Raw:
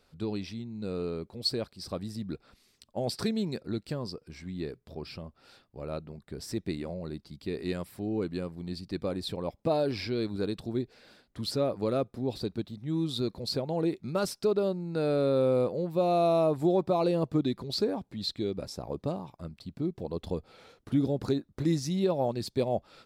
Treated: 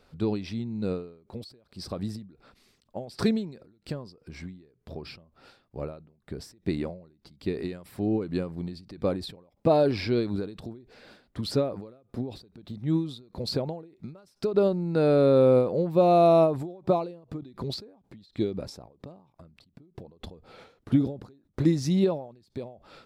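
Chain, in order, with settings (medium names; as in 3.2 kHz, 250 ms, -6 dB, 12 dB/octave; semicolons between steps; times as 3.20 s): treble shelf 3.4 kHz -7.5 dB; endings held to a fixed fall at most 110 dB/s; trim +6.5 dB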